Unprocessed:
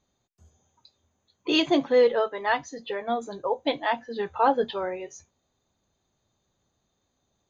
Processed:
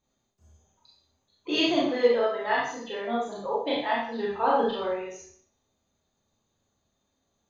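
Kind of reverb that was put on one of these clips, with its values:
four-comb reverb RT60 0.56 s, combs from 27 ms, DRR −5.5 dB
level −7 dB

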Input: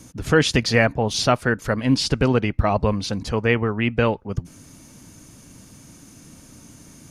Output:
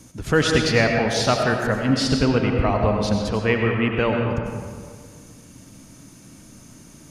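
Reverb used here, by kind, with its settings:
comb and all-pass reverb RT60 1.9 s, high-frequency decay 0.6×, pre-delay 55 ms, DRR 1.5 dB
level −2 dB

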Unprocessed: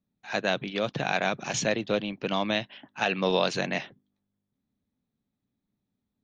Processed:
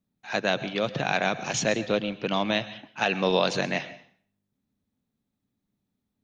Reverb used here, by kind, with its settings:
dense smooth reverb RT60 0.52 s, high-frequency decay 0.95×, pre-delay 100 ms, DRR 14.5 dB
level +1.5 dB

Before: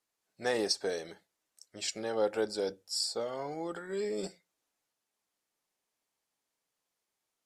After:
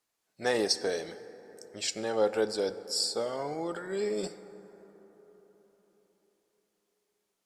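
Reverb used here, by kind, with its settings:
dense smooth reverb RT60 4.4 s, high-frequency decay 0.35×, DRR 13.5 dB
level +3 dB

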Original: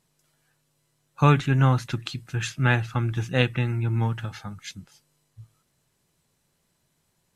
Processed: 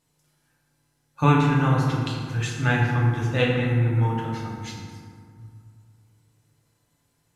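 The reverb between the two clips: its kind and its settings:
feedback delay network reverb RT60 2.1 s, low-frequency decay 1.2×, high-frequency decay 0.45×, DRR −3.5 dB
level −3.5 dB

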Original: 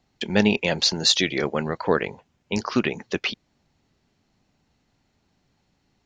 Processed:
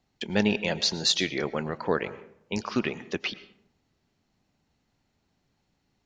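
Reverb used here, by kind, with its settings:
comb and all-pass reverb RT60 0.8 s, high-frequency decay 0.45×, pre-delay 70 ms, DRR 16 dB
level −5 dB

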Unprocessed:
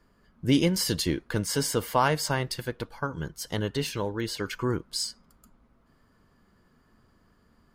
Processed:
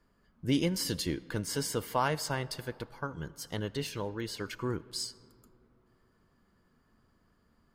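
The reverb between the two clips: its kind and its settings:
comb and all-pass reverb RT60 3.1 s, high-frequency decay 0.4×, pre-delay 35 ms, DRR 20 dB
level −6 dB

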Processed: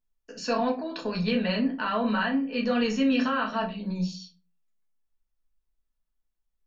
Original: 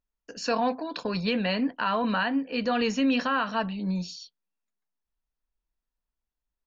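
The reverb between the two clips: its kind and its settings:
rectangular room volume 130 cubic metres, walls furnished, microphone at 1.5 metres
level −4 dB

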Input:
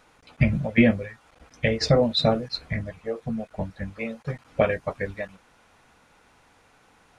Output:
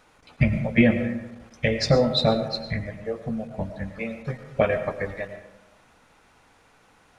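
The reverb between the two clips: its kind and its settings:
comb and all-pass reverb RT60 0.99 s, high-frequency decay 0.45×, pre-delay 65 ms, DRR 9 dB

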